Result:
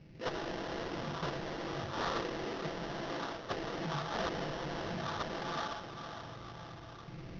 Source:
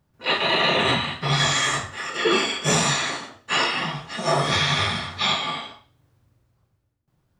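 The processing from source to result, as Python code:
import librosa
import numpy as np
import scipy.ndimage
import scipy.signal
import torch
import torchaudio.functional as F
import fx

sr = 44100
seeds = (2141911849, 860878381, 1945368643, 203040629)

p1 = fx.recorder_agc(x, sr, target_db=-17.5, rise_db_per_s=11.0, max_gain_db=30)
p2 = fx.env_lowpass(p1, sr, base_hz=420.0, full_db=-18.0)
p3 = 10.0 ** (-24.5 / 20.0) * (np.abs((p2 / 10.0 ** (-24.5 / 20.0) + 3.0) % 4.0 - 2.0) - 1.0)
p4 = fx.bass_treble(p3, sr, bass_db=-7, treble_db=13)
p5 = fx.env_lowpass_down(p4, sr, base_hz=570.0, full_db=-22.0)
p6 = p5 + 0.46 * np.pad(p5, (int(6.0 * sr / 1000.0), 0))[:len(p5)]
p7 = p6 + fx.echo_diffused(p6, sr, ms=519, feedback_pct=49, wet_db=-16, dry=0)
p8 = fx.sample_hold(p7, sr, seeds[0], rate_hz=2400.0, jitter_pct=20)
p9 = scipy.signal.sosfilt(scipy.signal.ellip(4, 1.0, 40, 5700.0, 'lowpass', fs=sr, output='sos'), p8)
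p10 = fx.env_flatten(p9, sr, amount_pct=50)
y = F.gain(torch.from_numpy(p10), -4.0).numpy()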